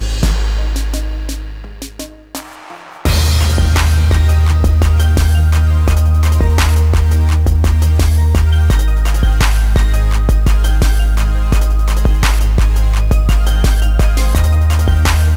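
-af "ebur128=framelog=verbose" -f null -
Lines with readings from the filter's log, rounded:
Integrated loudness:
  I:         -13.3 LUFS
  Threshold: -23.7 LUFS
Loudness range:
  LRA:         4.5 LU
  Threshold: -33.5 LUFS
  LRA low:   -16.6 LUFS
  LRA high:  -12.1 LUFS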